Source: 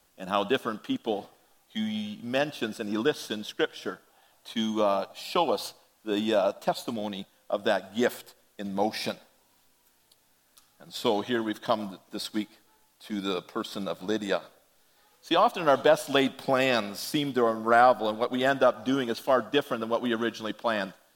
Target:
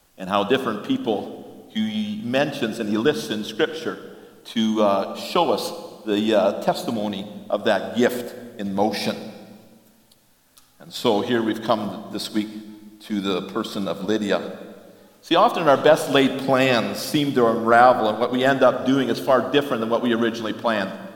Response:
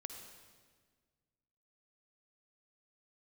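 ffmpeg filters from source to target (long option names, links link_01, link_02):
-filter_complex "[0:a]asplit=2[link_01][link_02];[1:a]atrim=start_sample=2205,lowshelf=frequency=300:gain=8.5[link_03];[link_02][link_03]afir=irnorm=-1:irlink=0,volume=1dB[link_04];[link_01][link_04]amix=inputs=2:normalize=0,volume=1dB"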